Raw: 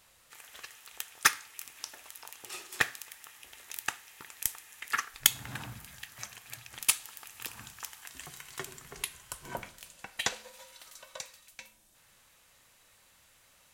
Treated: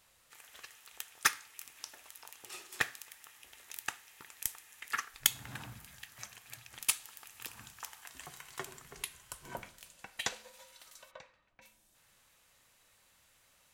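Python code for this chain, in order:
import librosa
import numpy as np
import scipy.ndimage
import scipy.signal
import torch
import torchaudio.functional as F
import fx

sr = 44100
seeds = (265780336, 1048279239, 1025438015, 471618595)

y = fx.dynamic_eq(x, sr, hz=810.0, q=0.75, threshold_db=-57.0, ratio=4.0, max_db=6, at=(7.75, 8.82))
y = fx.lowpass(y, sr, hz=fx.line((11.1, 2500.0), (11.61, 1200.0)), slope=12, at=(11.1, 11.61), fade=0.02)
y = y * 10.0 ** (-4.5 / 20.0)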